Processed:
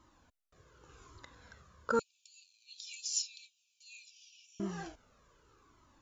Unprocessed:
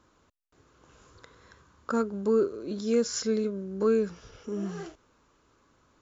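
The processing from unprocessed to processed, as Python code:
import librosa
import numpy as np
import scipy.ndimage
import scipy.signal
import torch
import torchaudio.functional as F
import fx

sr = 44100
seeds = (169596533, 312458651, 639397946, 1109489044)

y = fx.brickwall_highpass(x, sr, low_hz=2300.0, at=(1.99, 4.6))
y = fx.comb_cascade(y, sr, direction='falling', hz=0.86)
y = F.gain(torch.from_numpy(y), 3.0).numpy()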